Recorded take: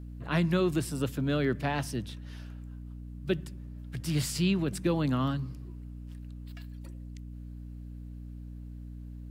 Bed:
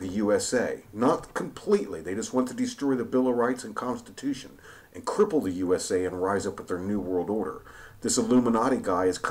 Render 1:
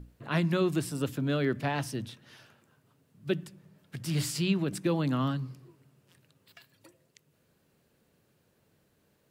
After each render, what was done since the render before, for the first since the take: hum notches 60/120/180/240/300 Hz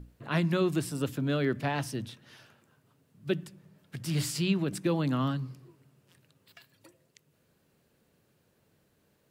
no audible change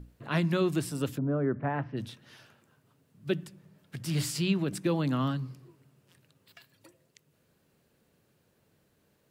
1.17–1.96 s: low-pass 1 kHz -> 2.3 kHz 24 dB/octave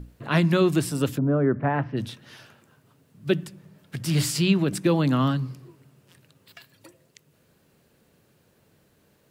trim +7 dB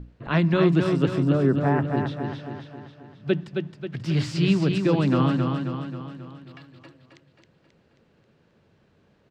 distance through air 170 m; feedback delay 268 ms, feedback 53%, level -5 dB

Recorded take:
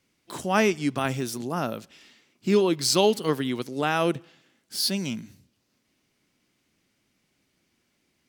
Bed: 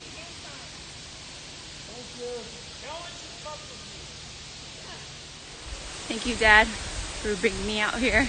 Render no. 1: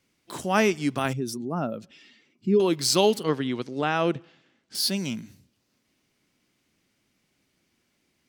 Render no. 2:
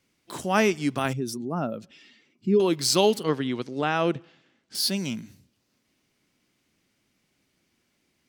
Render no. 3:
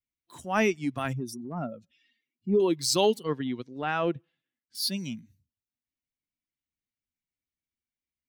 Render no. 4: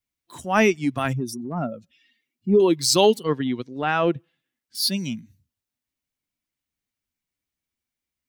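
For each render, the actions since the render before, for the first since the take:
1.13–2.60 s: spectral contrast enhancement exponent 1.6; 3.23–4.75 s: distance through air 95 m
no audible change
expander on every frequency bin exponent 1.5; transient shaper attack -5 dB, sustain -1 dB
trim +6.5 dB

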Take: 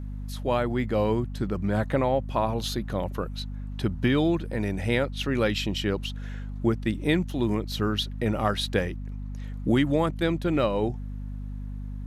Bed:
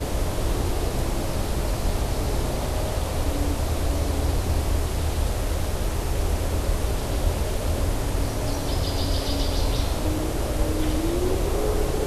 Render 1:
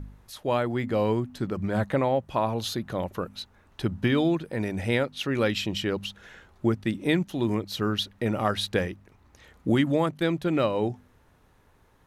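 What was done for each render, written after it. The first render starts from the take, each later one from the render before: de-hum 50 Hz, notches 5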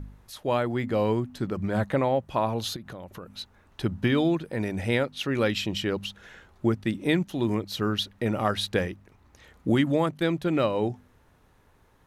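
2.76–3.39 s: compression 8:1, threshold -36 dBFS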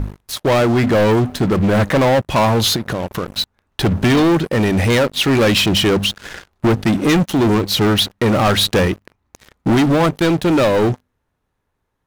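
gain riding 2 s; waveshaping leveller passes 5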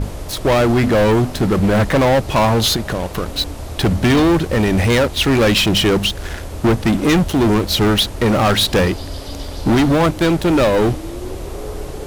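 add bed -4 dB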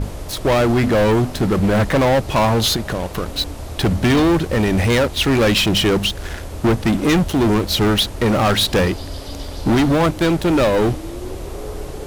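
trim -1.5 dB

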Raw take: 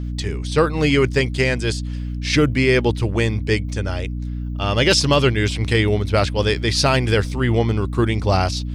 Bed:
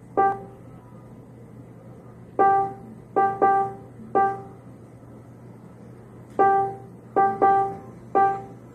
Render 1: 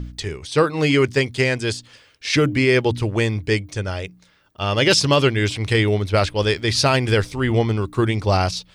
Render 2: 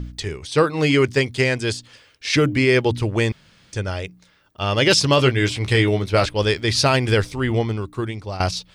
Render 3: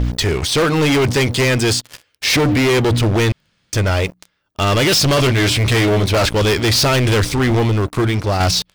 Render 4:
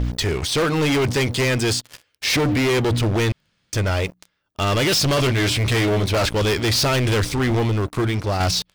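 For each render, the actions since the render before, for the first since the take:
de-hum 60 Hz, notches 5
3.32–3.73 s: room tone; 5.17–6.29 s: doubling 16 ms -7.5 dB; 7.26–8.40 s: fade out, to -14 dB
waveshaping leveller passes 5; peak limiter -11.5 dBFS, peak gain reduction 7.5 dB
trim -4.5 dB

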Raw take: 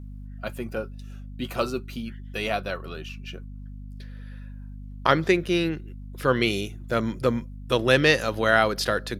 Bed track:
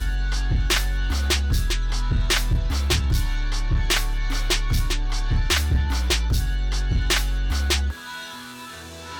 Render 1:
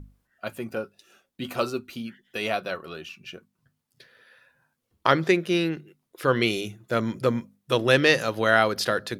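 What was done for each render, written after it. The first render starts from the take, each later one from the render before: hum notches 50/100/150/200/250 Hz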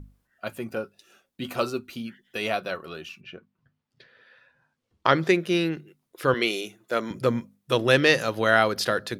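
3.20–5.14 s: low-pass 2.6 kHz -> 7 kHz; 6.34–7.11 s: high-pass 310 Hz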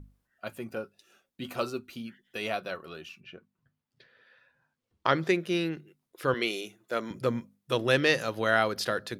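trim -5 dB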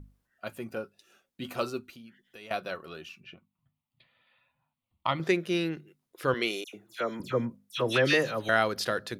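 1.90–2.51 s: compression 2:1, threshold -54 dBFS; 3.34–5.20 s: static phaser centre 1.6 kHz, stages 6; 6.64–8.49 s: phase dispersion lows, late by 94 ms, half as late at 2.3 kHz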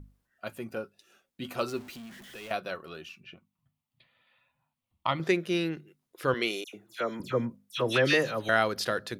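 1.68–2.52 s: jump at every zero crossing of -44 dBFS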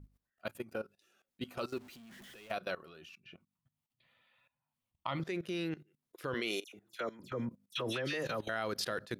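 level held to a coarse grid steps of 18 dB

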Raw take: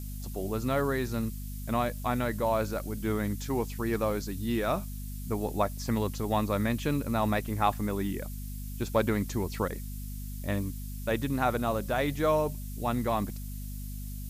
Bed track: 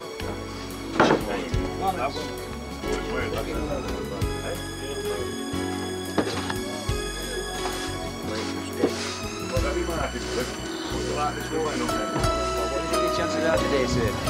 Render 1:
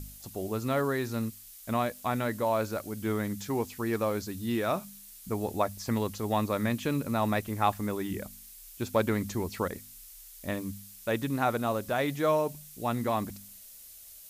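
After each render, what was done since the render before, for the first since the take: de-hum 50 Hz, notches 5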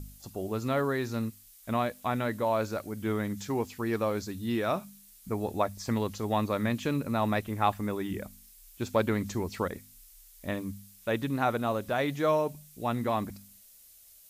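noise print and reduce 6 dB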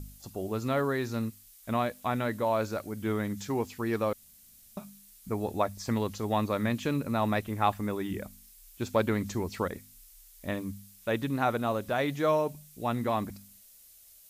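4.13–4.77 s: room tone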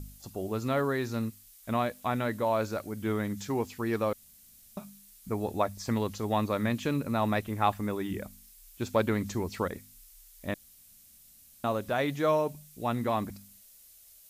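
10.54–11.64 s: room tone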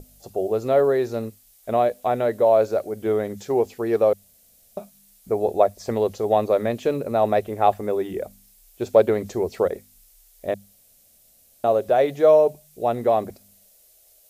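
high-order bell 530 Hz +13 dB 1.3 oct; hum notches 50/100/150/200 Hz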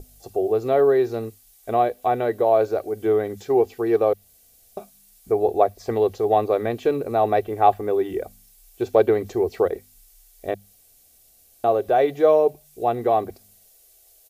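comb 2.6 ms, depth 47%; dynamic bell 7.6 kHz, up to -7 dB, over -50 dBFS, Q 0.9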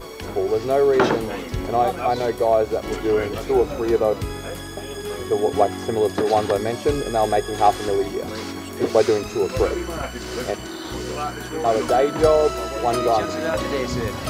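add bed track -1 dB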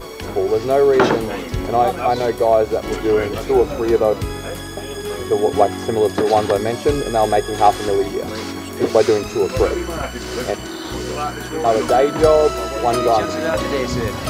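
trim +3.5 dB; peak limiter -1 dBFS, peak gain reduction 1.5 dB

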